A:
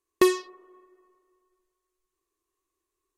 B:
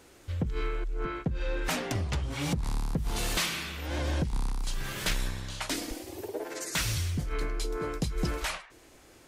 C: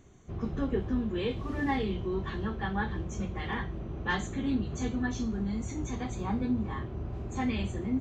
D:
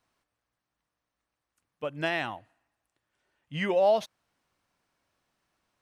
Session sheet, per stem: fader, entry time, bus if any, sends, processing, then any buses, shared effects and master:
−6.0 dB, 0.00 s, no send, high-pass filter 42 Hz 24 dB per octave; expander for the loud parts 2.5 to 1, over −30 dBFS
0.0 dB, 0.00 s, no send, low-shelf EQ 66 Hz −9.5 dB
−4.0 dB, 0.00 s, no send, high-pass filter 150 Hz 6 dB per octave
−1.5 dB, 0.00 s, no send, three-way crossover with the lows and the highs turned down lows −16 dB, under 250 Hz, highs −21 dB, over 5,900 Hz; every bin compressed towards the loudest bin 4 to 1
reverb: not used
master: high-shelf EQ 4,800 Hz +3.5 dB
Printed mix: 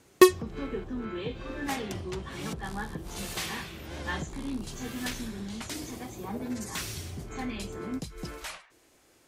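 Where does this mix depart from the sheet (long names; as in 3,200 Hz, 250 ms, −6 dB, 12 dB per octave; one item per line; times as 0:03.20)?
stem A −6.0 dB → +5.0 dB
stem B 0.0 dB → −7.0 dB
stem D: muted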